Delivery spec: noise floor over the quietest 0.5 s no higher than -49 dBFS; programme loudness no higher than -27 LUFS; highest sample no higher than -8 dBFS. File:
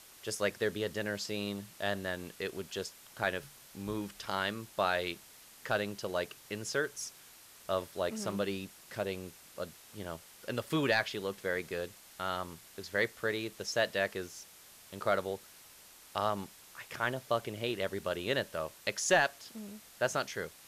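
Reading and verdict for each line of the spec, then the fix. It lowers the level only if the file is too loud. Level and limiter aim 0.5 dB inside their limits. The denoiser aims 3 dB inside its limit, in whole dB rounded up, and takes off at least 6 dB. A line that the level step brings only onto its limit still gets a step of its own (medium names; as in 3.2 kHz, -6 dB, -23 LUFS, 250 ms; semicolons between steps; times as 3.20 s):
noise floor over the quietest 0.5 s -56 dBFS: pass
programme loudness -35.5 LUFS: pass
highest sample -16.5 dBFS: pass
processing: none needed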